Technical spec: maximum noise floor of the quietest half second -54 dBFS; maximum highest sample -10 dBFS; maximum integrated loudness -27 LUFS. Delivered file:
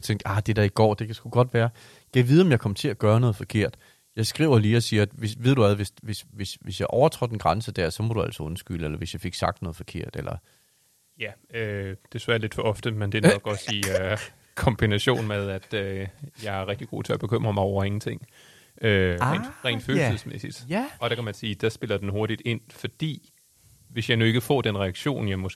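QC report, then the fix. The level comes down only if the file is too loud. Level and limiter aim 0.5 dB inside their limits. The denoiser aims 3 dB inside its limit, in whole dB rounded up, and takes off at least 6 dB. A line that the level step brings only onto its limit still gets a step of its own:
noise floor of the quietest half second -64 dBFS: OK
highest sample -3.5 dBFS: fail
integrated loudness -25.5 LUFS: fail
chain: gain -2 dB; limiter -10.5 dBFS

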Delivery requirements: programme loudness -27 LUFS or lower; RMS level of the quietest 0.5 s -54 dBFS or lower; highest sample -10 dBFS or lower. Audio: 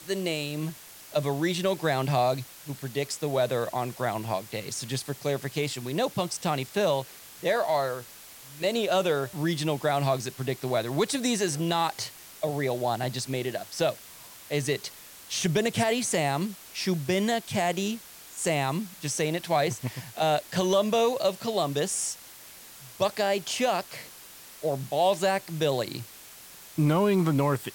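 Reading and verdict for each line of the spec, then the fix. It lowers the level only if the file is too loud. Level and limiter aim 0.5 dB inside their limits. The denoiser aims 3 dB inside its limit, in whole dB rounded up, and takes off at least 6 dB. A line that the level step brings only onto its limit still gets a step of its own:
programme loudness -28.0 LUFS: OK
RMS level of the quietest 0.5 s -48 dBFS: fail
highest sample -11.5 dBFS: OK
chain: denoiser 9 dB, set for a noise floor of -48 dBFS

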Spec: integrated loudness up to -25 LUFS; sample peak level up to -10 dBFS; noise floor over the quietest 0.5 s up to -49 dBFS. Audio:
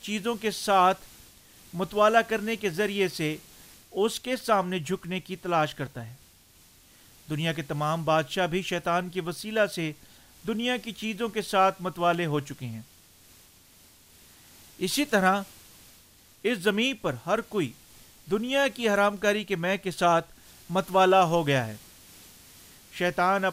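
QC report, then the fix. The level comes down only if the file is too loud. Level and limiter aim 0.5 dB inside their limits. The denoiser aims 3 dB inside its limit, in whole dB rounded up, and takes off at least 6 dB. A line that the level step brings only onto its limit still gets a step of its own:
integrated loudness -26.5 LUFS: OK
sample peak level -8.0 dBFS: fail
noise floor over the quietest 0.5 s -57 dBFS: OK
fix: limiter -10.5 dBFS

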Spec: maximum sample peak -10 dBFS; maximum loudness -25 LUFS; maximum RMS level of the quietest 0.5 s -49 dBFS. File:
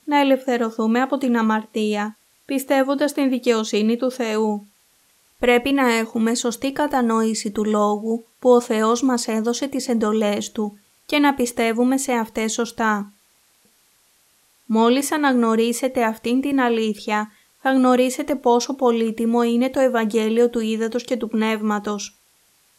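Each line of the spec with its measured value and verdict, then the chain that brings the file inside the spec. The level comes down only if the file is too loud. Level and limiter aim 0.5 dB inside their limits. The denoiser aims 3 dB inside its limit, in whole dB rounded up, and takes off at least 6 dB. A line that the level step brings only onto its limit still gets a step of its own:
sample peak -4.0 dBFS: fail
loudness -20.0 LUFS: fail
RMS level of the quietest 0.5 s -59 dBFS: OK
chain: gain -5.5 dB; limiter -10.5 dBFS

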